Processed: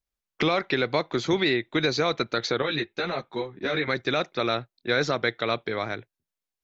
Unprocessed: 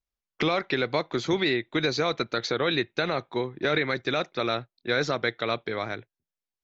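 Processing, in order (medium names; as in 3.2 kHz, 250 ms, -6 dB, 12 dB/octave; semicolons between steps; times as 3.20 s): 2.62–3.88 s: three-phase chorus; trim +1.5 dB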